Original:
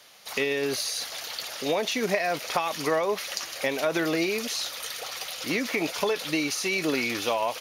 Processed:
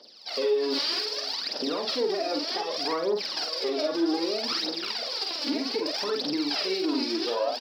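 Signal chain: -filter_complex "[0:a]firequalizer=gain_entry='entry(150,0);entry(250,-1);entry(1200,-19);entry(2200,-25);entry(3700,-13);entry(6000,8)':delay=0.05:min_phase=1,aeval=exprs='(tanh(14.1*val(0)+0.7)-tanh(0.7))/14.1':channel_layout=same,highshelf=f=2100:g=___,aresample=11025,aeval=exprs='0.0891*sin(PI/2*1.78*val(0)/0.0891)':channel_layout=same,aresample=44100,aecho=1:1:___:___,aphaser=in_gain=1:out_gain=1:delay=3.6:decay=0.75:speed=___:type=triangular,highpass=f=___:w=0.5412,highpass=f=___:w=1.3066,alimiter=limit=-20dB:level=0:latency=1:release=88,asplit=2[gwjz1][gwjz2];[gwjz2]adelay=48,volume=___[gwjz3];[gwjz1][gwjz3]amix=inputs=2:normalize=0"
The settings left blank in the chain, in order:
5, 553, 0.158, 0.64, 260, 260, -4dB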